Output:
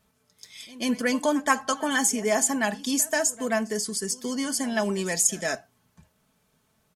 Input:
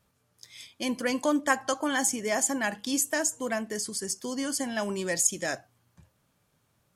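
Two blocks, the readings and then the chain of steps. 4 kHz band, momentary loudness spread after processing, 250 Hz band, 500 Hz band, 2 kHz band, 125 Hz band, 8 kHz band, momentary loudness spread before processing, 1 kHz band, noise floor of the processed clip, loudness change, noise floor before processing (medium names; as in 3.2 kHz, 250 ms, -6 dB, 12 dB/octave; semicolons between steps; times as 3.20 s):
+3.0 dB, 7 LU, +3.5 dB, +3.5 dB, +2.5 dB, +5.0 dB, +3.0 dB, 8 LU, +3.5 dB, -70 dBFS, +3.0 dB, -72 dBFS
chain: comb 4.6 ms, depth 55%; pre-echo 134 ms -20 dB; trim +2 dB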